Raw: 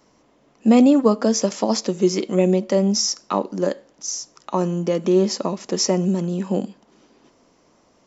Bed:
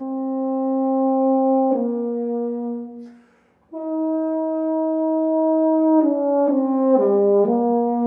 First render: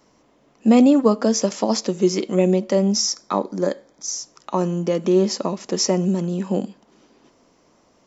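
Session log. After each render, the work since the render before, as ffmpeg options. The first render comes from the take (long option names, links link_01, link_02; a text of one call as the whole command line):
ffmpeg -i in.wav -filter_complex "[0:a]asettb=1/sr,asplit=3[link_01][link_02][link_03];[link_01]atrim=end=3.064[link_04];[link_02]atrim=start=3.06:end=4.18,asetpts=PTS-STARTPTS,afade=type=in:duration=0.004:curve=qsin,afade=type=out:start_time=1.116:duration=0.004:curve=qsin,asuperstop=centerf=2800:order=12:qfactor=5.7[link_05];[link_03]atrim=start=4.176[link_06];[link_04][link_05]acrossfade=duration=0.004:curve1=hsin:curve2=qsin[link_07];[link_07][link_06]acrossfade=duration=0.004:curve1=qsin:curve2=hsin" out.wav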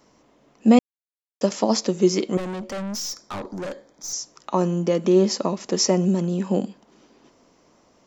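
ffmpeg -i in.wav -filter_complex "[0:a]asettb=1/sr,asplit=3[link_01][link_02][link_03];[link_01]atrim=end=2.374[link_04];[link_02]atrim=start=2.37:end=4.13,asetpts=PTS-STARTPTS,afade=type=in:duration=0.004:curve=qsin,afade=type=out:start_time=1.756:duration=0.004:curve=qsin,aeval=exprs='(tanh(25.1*val(0)+0.25)-tanh(0.25))/25.1':channel_layout=same[link_05];[link_03]atrim=start=4.126[link_06];[link_04][link_05]acrossfade=duration=0.004:curve1=hsin:curve2=qsin[link_07];[link_07][link_06]acrossfade=duration=0.004:curve1=qsin:curve2=hsin,asplit=3[link_08][link_09][link_10];[link_08]atrim=end=0.79,asetpts=PTS-STARTPTS,afade=type=out:start_time=0.786:duration=0.004:curve=hsin[link_11];[link_09]atrim=start=0.79:end=1.41,asetpts=PTS-STARTPTS,volume=0[link_12];[link_10]atrim=start=1.41,asetpts=PTS-STARTPTS,afade=type=in:duration=0.004:curve=hsin[link_13];[link_11][link_12][link_13]concat=n=3:v=0:a=1" out.wav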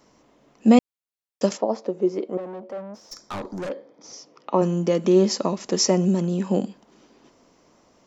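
ffmpeg -i in.wav -filter_complex "[0:a]asplit=3[link_01][link_02][link_03];[link_01]afade=type=out:start_time=1.56:duration=0.02[link_04];[link_02]bandpass=frequency=550:width_type=q:width=1.3,afade=type=in:start_time=1.56:duration=0.02,afade=type=out:start_time=3.11:duration=0.02[link_05];[link_03]afade=type=in:start_time=3.11:duration=0.02[link_06];[link_04][link_05][link_06]amix=inputs=3:normalize=0,asplit=3[link_07][link_08][link_09];[link_07]afade=type=out:start_time=3.68:duration=0.02[link_10];[link_08]highpass=150,equalizer=frequency=280:width_type=q:width=4:gain=4,equalizer=frequency=480:width_type=q:width=4:gain=8,equalizer=frequency=1600:width_type=q:width=4:gain=-6,equalizer=frequency=3900:width_type=q:width=4:gain=-7,lowpass=frequency=4300:width=0.5412,lowpass=frequency=4300:width=1.3066,afade=type=in:start_time=3.68:duration=0.02,afade=type=out:start_time=4.61:duration=0.02[link_11];[link_09]afade=type=in:start_time=4.61:duration=0.02[link_12];[link_10][link_11][link_12]amix=inputs=3:normalize=0" out.wav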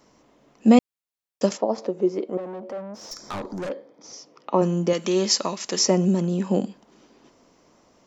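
ffmpeg -i in.wav -filter_complex "[0:a]asettb=1/sr,asplit=3[link_01][link_02][link_03];[link_01]atrim=end=1.784[link_04];[link_02]atrim=start=1.78:end=3.64,asetpts=PTS-STARTPTS,afade=type=in:duration=0.004:curve=qsin,afade=type=out:start_time=1.856:duration=0.004:curve=qsin,acompressor=mode=upward:threshold=-30dB:ratio=2.5:attack=3.2:release=140:knee=2.83:detection=peak[link_05];[link_03]atrim=start=3.636[link_06];[link_04][link_05]acrossfade=duration=0.004:curve1=hsin:curve2=qsin[link_07];[link_07][link_06]acrossfade=duration=0.004:curve1=qsin:curve2=hsin,asettb=1/sr,asplit=3[link_08][link_09][link_10];[link_08]atrim=end=4.934[link_11];[link_09]atrim=start=4.93:end=5.79,asetpts=PTS-STARTPTS,afade=type=in:duration=0.004:curve=qsin,afade=type=out:start_time=0.856:duration=0.004:curve=qsin,tiltshelf=frequency=970:gain=-7.5[link_12];[link_10]atrim=start=5.786[link_13];[link_11][link_12]acrossfade=duration=0.004:curve1=hsin:curve2=qsin[link_14];[link_14][link_13]acrossfade=duration=0.004:curve1=qsin:curve2=hsin" out.wav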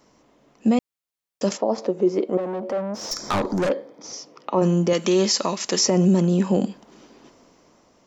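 ffmpeg -i in.wav -af "dynaudnorm=framelen=300:gausssize=7:maxgain=10.5dB,alimiter=limit=-10.5dB:level=0:latency=1:release=18" out.wav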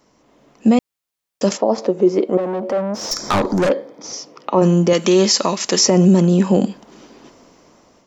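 ffmpeg -i in.wav -af "dynaudnorm=framelen=190:gausssize=3:maxgain=6dB" out.wav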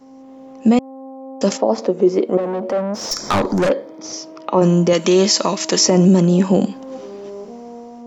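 ffmpeg -i in.wav -i bed.wav -filter_complex "[1:a]volume=-16.5dB[link_01];[0:a][link_01]amix=inputs=2:normalize=0" out.wav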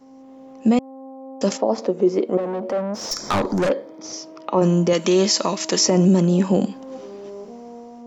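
ffmpeg -i in.wav -af "volume=-3.5dB" out.wav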